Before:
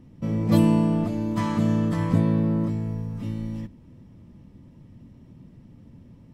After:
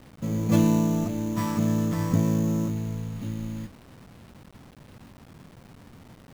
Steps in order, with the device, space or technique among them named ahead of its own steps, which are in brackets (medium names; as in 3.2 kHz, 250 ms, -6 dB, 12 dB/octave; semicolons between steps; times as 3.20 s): early 8-bit sampler (sample-rate reducer 6.7 kHz, jitter 0%; bit crusher 8-bit); trim -2 dB